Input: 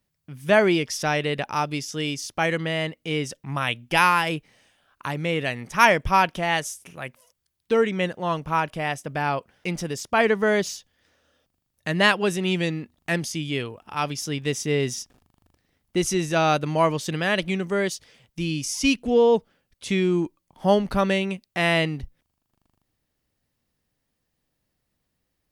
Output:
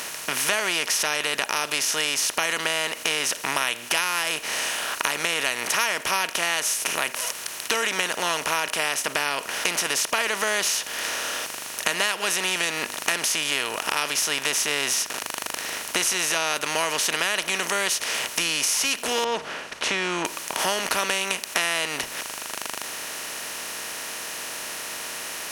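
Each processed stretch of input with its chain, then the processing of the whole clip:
19.24–20.25 s: tape spacing loss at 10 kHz 41 dB + hum notches 50/100/150 Hz
whole clip: spectral levelling over time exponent 0.4; tilt EQ +4.5 dB/octave; compression 4:1, threshold -21 dBFS; trim -1 dB

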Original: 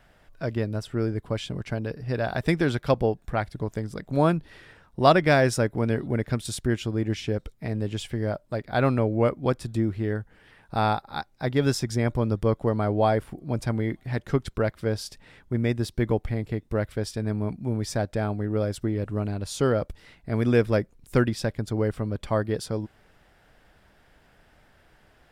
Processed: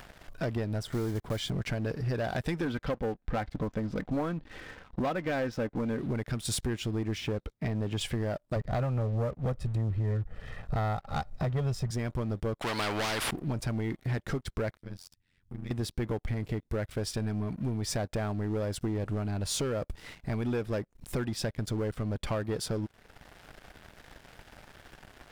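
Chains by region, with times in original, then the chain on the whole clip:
0.83–1.52 s: block-companded coder 5-bit + Butterworth band-stop 2.6 kHz, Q 6 + tape noise reduction on one side only decoder only
2.65–5.99 s: distance through air 220 m + comb 3.9 ms, depth 42%
7.18–8.01 s: high-pass 52 Hz 6 dB/octave + treble shelf 5.3 kHz -11 dB
8.56–11.91 s: tilt EQ -2.5 dB/octave + comb 1.6 ms, depth 76%
12.61–13.31 s: overdrive pedal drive 19 dB, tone 2 kHz, clips at -10.5 dBFS + spectrum-flattening compressor 4:1
14.77–15.71 s: amplifier tone stack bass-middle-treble 6-0-2 + AM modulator 90 Hz, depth 90%
whole clip: compression 10:1, threshold -30 dBFS; waveshaping leveller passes 3; upward compressor, threshold -35 dBFS; trim -5.5 dB

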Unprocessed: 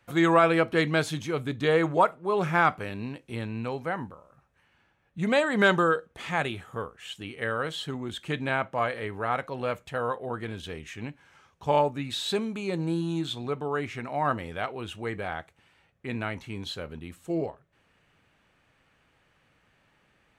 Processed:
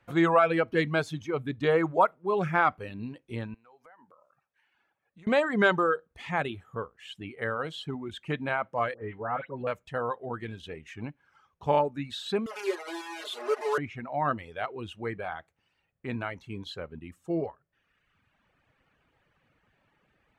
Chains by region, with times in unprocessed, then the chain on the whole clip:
3.54–5.27 s: high-pass 640 Hz 6 dB/octave + compression, threshold -50 dBFS
8.94–9.67 s: distance through air 410 m + phase dispersion highs, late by 111 ms, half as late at 2.3 kHz
12.46–13.78 s: one-bit delta coder 64 kbps, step -28 dBFS + elliptic high-pass 350 Hz, stop band 60 dB + comb 4.8 ms, depth 88%
whole clip: reverb removal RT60 1.2 s; treble shelf 4.3 kHz -11.5 dB

